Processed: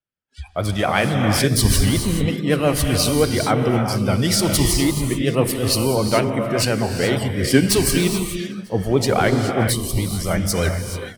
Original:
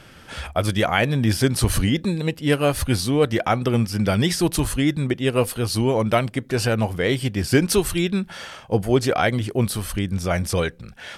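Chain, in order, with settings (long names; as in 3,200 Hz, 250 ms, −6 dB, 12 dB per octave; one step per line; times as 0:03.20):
stylus tracing distortion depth 0.034 ms
noise reduction from a noise print of the clip's start 25 dB
in parallel at −3 dB: compressor whose output falls as the input rises −26 dBFS, ratio −1
on the sum: pitch vibrato 8.4 Hz 64 cents
on a send: repeating echo 949 ms, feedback 49%, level −19 dB
on the sum: reverb whose tail is shaped and stops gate 460 ms rising, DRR 2.5 dB
multiband upward and downward expander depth 70%
level −2 dB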